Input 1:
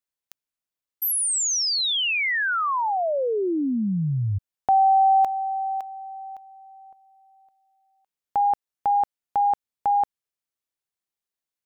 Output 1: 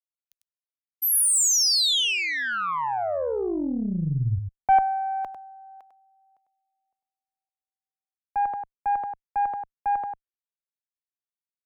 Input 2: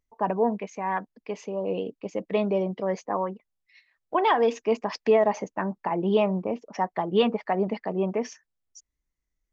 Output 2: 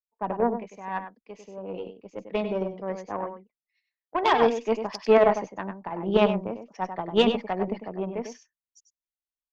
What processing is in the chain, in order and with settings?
delay 99 ms -6 dB; Chebyshev shaper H 3 -17 dB, 4 -26 dB, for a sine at -9 dBFS; three bands expanded up and down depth 70%

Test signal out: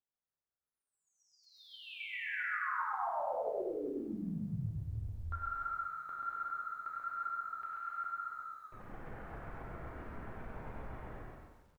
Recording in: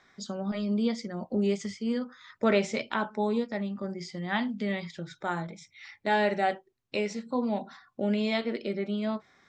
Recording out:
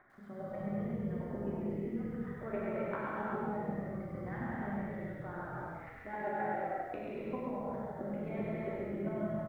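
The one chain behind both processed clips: reverb removal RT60 0.76 s; low-pass 1.7 kHz 24 dB/octave; reverb removal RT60 0.64 s; compression 2:1, threshold -50 dBFS; square tremolo 7.5 Hz, depth 60%, duty 15%; on a send: frequency-shifting echo 135 ms, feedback 46%, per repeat -42 Hz, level -5 dB; on the sum: gated-style reverb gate 410 ms flat, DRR -7 dB; bit-crushed delay 99 ms, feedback 35%, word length 12-bit, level -6.5 dB; trim +2.5 dB

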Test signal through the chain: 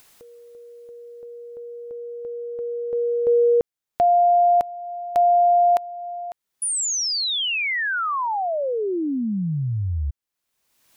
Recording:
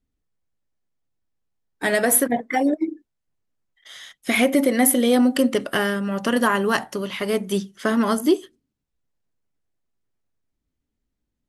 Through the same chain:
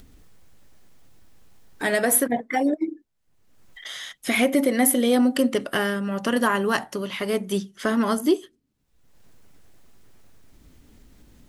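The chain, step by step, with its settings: upward compressor, threshold -25 dBFS; trim -2 dB

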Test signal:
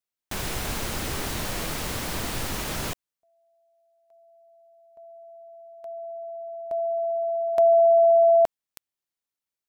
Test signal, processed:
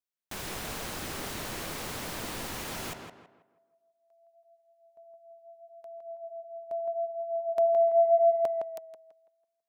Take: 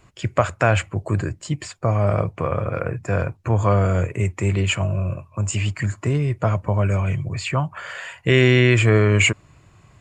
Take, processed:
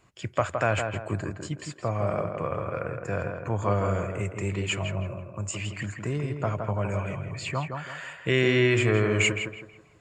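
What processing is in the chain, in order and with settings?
bass shelf 110 Hz -8 dB; tape echo 164 ms, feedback 40%, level -4 dB, low-pass 2.1 kHz; trim -6.5 dB

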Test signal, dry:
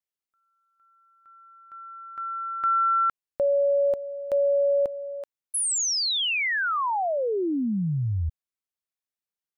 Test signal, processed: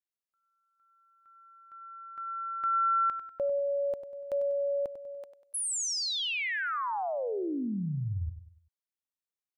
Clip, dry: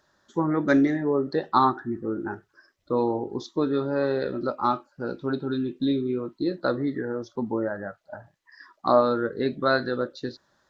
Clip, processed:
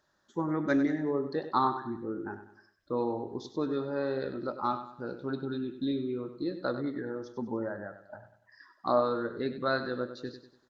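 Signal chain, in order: feedback delay 97 ms, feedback 40%, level -11 dB; trim -7 dB

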